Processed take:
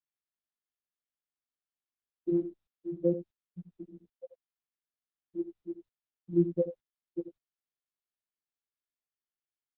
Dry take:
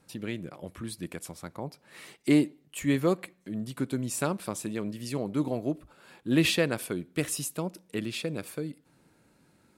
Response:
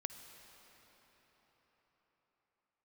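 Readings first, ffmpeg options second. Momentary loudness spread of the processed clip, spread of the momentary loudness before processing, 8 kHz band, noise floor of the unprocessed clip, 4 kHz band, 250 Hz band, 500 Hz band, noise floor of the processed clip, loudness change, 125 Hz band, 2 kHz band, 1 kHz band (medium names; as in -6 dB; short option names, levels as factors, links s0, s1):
21 LU, 15 LU, under -40 dB, -65 dBFS, under -40 dB, -7.0 dB, -4.0 dB, under -85 dBFS, -3.0 dB, -9.0 dB, under -40 dB, under -25 dB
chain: -filter_complex "[0:a]aemphasis=mode=reproduction:type=75fm,afftfilt=real='re*gte(hypot(re,im),0.398)':imag='im*gte(hypot(re,im),0.398)':win_size=1024:overlap=0.75,highpass=98,afftfilt=real='hypot(re,im)*cos(PI*b)':imag='0':win_size=1024:overlap=0.75,asplit=2[s0][s1];[s1]aecho=0:1:83:0.251[s2];[s0][s2]amix=inputs=2:normalize=0" -ar 48000 -c:a libopus -b:a 8k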